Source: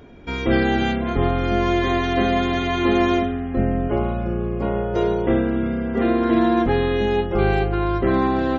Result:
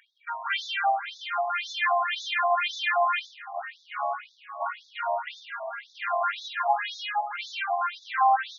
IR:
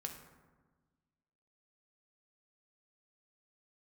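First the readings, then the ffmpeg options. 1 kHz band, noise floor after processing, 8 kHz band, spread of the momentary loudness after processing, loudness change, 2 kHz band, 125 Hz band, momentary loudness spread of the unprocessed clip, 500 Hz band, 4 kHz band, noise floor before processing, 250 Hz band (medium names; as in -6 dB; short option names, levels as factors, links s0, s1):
-0.5 dB, -60 dBFS, no reading, 12 LU, -7.5 dB, -1.5 dB, under -40 dB, 5 LU, -13.0 dB, -1.5 dB, -26 dBFS, under -40 dB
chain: -filter_complex "[0:a]asplit=2[s0][s1];[1:a]atrim=start_sample=2205,lowpass=f=2700:p=1[s2];[s1][s2]afir=irnorm=-1:irlink=0,volume=1.5[s3];[s0][s3]amix=inputs=2:normalize=0,adynamicsmooth=sensitivity=5.5:basefreq=1900,afftfilt=real='re*between(b*sr/1024,800*pow(4900/800,0.5+0.5*sin(2*PI*1.9*pts/sr))/1.41,800*pow(4900/800,0.5+0.5*sin(2*PI*1.9*pts/sr))*1.41)':imag='im*between(b*sr/1024,800*pow(4900/800,0.5+0.5*sin(2*PI*1.9*pts/sr))/1.41,800*pow(4900/800,0.5+0.5*sin(2*PI*1.9*pts/sr))*1.41)':win_size=1024:overlap=0.75"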